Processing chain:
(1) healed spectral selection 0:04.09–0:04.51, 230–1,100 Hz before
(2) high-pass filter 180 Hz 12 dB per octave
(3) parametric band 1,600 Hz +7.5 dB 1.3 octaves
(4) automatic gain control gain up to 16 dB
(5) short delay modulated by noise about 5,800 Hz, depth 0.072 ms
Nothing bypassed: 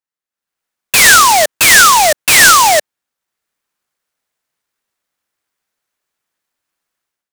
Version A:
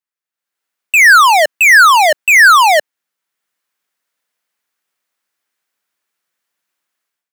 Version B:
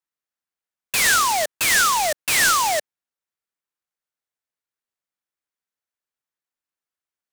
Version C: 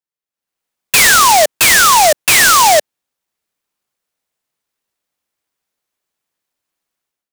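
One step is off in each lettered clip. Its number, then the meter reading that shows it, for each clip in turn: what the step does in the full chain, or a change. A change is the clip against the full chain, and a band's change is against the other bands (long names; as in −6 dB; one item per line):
5, 8 kHz band −10.5 dB
4, change in integrated loudness −12.0 LU
3, 500 Hz band +3.0 dB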